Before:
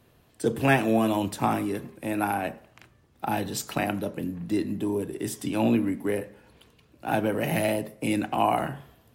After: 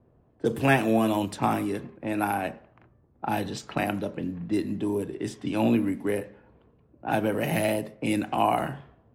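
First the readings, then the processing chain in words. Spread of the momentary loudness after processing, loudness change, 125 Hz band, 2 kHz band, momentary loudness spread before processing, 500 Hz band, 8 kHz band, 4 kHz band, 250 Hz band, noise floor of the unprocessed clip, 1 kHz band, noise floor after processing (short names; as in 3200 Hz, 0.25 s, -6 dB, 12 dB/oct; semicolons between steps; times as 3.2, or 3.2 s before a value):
10 LU, 0.0 dB, 0.0 dB, 0.0 dB, 9 LU, 0.0 dB, -4.0 dB, -0.5 dB, 0.0 dB, -61 dBFS, 0.0 dB, -62 dBFS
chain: low-pass opened by the level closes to 760 Hz, open at -23 dBFS; ending taper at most 250 dB/s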